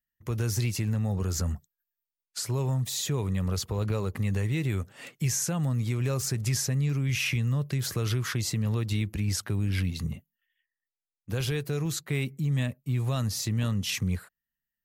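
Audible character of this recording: noise floor -91 dBFS; spectral tilt -5.0 dB/oct

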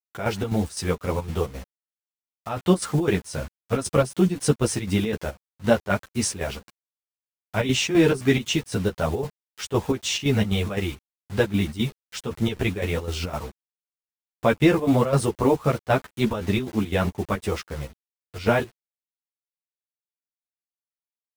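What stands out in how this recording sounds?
a quantiser's noise floor 8-bit, dither none; chopped level 3.9 Hz, depth 65%, duty 65%; a shimmering, thickened sound

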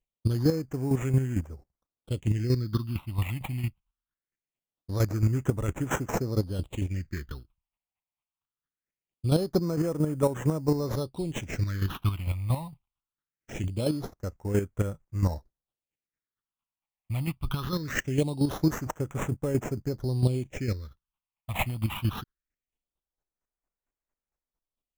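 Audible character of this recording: aliases and images of a low sample rate 4700 Hz, jitter 0%; phasing stages 6, 0.22 Hz, lowest notch 400–4300 Hz; chopped level 4.4 Hz, depth 60%, duty 20%

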